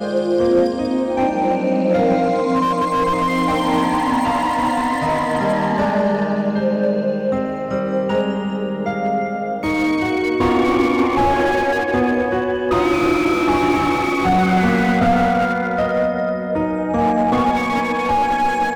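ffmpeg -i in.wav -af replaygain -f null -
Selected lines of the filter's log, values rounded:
track_gain = +0.4 dB
track_peak = 0.452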